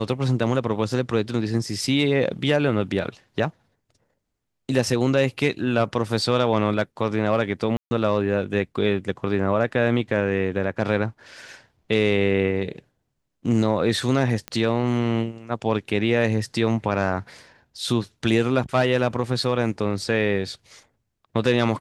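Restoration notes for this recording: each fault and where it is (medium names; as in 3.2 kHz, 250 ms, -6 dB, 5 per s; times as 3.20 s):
7.77–7.91 s: dropout 140 ms
14.48 s: pop -15 dBFS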